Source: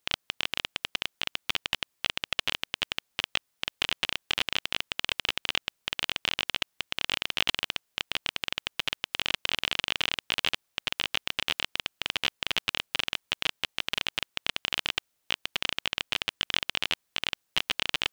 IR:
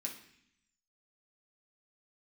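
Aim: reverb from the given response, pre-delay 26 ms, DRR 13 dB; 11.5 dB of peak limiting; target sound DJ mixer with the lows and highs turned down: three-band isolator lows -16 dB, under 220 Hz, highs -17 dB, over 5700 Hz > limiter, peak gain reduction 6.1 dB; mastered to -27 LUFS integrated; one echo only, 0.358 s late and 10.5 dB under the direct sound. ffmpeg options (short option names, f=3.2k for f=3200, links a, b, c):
-filter_complex "[0:a]alimiter=limit=-14dB:level=0:latency=1,aecho=1:1:358:0.299,asplit=2[a][b];[1:a]atrim=start_sample=2205,adelay=26[c];[b][c]afir=irnorm=-1:irlink=0,volume=-11.5dB[d];[a][d]amix=inputs=2:normalize=0,acrossover=split=220 5700:gain=0.158 1 0.141[e][f][g];[e][f][g]amix=inputs=3:normalize=0,volume=13dB,alimiter=limit=-7dB:level=0:latency=1"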